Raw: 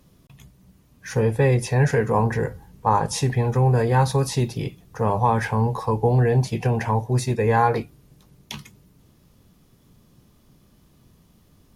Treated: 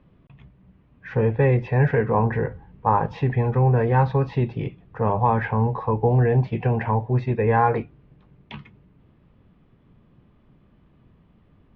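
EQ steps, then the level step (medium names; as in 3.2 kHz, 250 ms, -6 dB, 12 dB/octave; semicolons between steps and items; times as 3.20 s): low-pass 2.8 kHz 24 dB/octave; distance through air 72 m; 0.0 dB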